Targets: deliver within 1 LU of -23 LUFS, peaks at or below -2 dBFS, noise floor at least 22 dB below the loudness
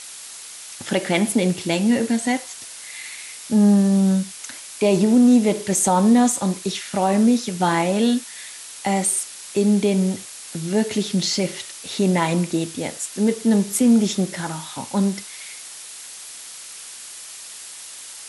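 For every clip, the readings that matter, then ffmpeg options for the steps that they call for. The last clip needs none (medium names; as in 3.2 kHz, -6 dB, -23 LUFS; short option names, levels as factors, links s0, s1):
noise floor -38 dBFS; noise floor target -42 dBFS; loudness -20.0 LUFS; peak level -6.0 dBFS; loudness target -23.0 LUFS
-> -af "afftdn=nr=6:nf=-38"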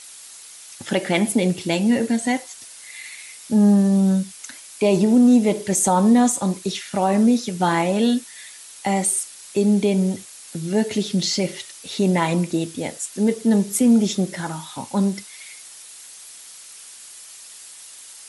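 noise floor -42 dBFS; loudness -20.0 LUFS; peak level -6.0 dBFS; loudness target -23.0 LUFS
-> -af "volume=0.708"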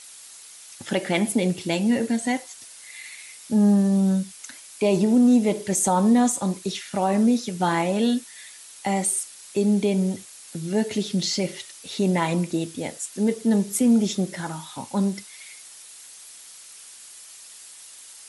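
loudness -23.0 LUFS; peak level -9.0 dBFS; noise floor -45 dBFS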